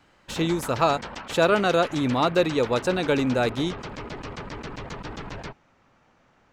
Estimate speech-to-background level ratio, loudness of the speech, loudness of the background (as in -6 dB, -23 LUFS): 13.5 dB, -23.5 LUFS, -37.0 LUFS